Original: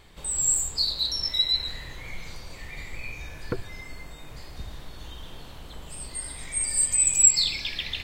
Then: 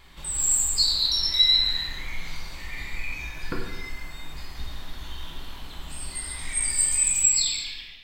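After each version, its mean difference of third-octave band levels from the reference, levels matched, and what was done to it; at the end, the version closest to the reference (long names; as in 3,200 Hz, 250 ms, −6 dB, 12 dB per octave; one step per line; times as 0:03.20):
3.5 dB: fade-out on the ending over 1.24 s
graphic EQ with 10 bands 125 Hz −10 dB, 500 Hz −10 dB, 8,000 Hz −4 dB
reverb whose tail is shaped and stops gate 370 ms falling, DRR −1 dB
level +2 dB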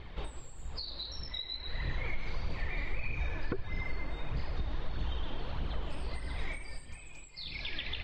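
11.0 dB: downward compressor 16 to 1, threshold −35 dBFS, peak gain reduction 24 dB
flanger 1.6 Hz, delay 0.2 ms, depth 3.5 ms, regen +41%
high-frequency loss of the air 270 metres
level +9.5 dB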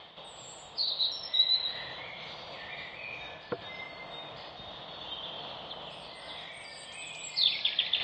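7.5 dB: reversed playback
upward compression, threshold −26 dBFS
reversed playback
loudspeaker in its box 260–3,700 Hz, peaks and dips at 260 Hz −9 dB, 380 Hz −9 dB, 680 Hz +5 dB, 1,600 Hz −6 dB, 2,300 Hz −6 dB, 3,400 Hz +8 dB
MP3 56 kbit/s 44,100 Hz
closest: first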